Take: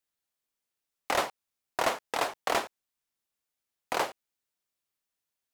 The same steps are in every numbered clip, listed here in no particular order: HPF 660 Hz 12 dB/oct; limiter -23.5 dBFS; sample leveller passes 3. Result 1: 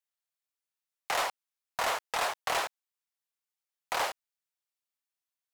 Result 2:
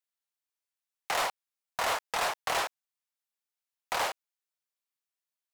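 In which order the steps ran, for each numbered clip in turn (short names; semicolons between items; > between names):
HPF > sample leveller > limiter; HPF > limiter > sample leveller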